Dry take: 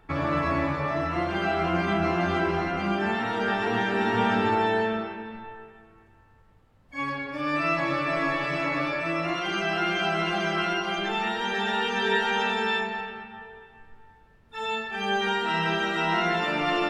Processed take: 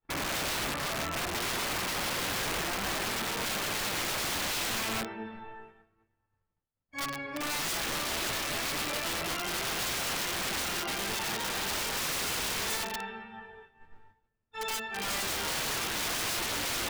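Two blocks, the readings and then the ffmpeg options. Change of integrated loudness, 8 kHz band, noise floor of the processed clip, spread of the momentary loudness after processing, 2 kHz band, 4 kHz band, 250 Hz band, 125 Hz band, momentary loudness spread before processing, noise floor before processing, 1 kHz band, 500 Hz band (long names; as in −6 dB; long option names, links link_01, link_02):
−5.0 dB, +16.5 dB, −80 dBFS, 7 LU, −6.5 dB, +0.5 dB, −11.5 dB, −10.0 dB, 9 LU, −57 dBFS, −9.5 dB, −11.0 dB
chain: -af "flanger=delay=8.5:depth=4:regen=58:speed=0.98:shape=sinusoidal,aeval=exprs='(mod(23.7*val(0)+1,2)-1)/23.7':channel_layout=same,agate=range=-33dB:threshold=-48dB:ratio=3:detection=peak"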